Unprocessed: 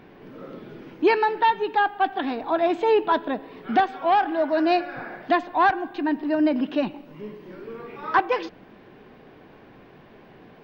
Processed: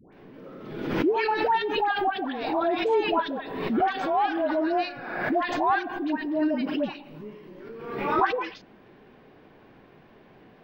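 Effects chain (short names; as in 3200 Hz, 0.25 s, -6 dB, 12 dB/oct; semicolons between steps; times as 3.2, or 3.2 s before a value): dispersion highs, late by 0.13 s, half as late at 970 Hz; backwards sustainer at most 48 dB/s; gain -4.5 dB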